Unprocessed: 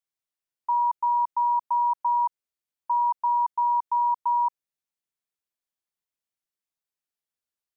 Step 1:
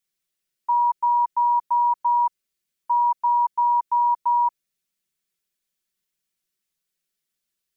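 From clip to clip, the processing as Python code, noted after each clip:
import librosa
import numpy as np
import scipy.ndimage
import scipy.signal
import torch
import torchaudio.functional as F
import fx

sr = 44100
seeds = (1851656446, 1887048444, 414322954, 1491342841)

y = fx.peak_eq(x, sr, hz=850.0, db=-10.0, octaves=1.3)
y = y + 0.65 * np.pad(y, (int(5.3 * sr / 1000.0), 0))[:len(y)]
y = y * 10.0 ** (8.5 / 20.0)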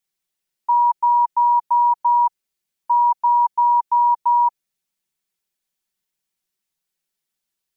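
y = fx.peak_eq(x, sr, hz=850.0, db=7.0, octaves=0.39)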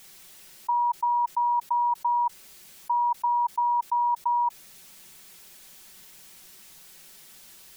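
y = fx.env_flatten(x, sr, amount_pct=100)
y = y * 10.0 ** (-8.5 / 20.0)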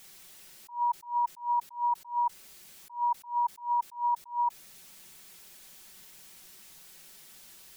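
y = fx.attack_slew(x, sr, db_per_s=190.0)
y = y * 10.0 ** (-2.5 / 20.0)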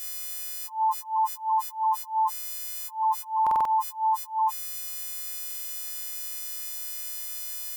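y = fx.freq_snap(x, sr, grid_st=3)
y = fx.buffer_glitch(y, sr, at_s=(3.42, 5.46), block=2048, repeats=4)
y = y * 10.0 ** (4.0 / 20.0)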